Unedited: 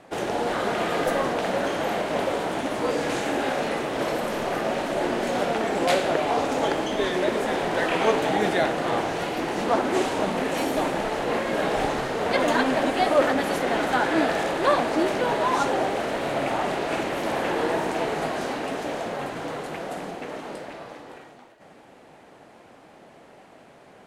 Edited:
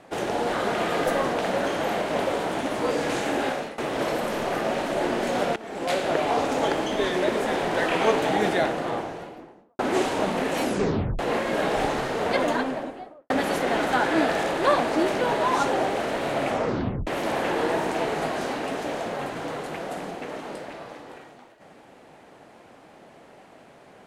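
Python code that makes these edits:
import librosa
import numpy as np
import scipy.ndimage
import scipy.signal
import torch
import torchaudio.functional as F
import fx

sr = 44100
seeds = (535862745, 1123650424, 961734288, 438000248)

y = fx.studio_fade_out(x, sr, start_s=8.42, length_s=1.37)
y = fx.studio_fade_out(y, sr, start_s=12.18, length_s=1.12)
y = fx.edit(y, sr, fx.fade_out_to(start_s=3.46, length_s=0.32, floor_db=-19.0),
    fx.fade_in_from(start_s=5.56, length_s=0.62, floor_db=-19.0),
    fx.tape_stop(start_s=10.62, length_s=0.57),
    fx.tape_stop(start_s=16.47, length_s=0.6), tone=tone)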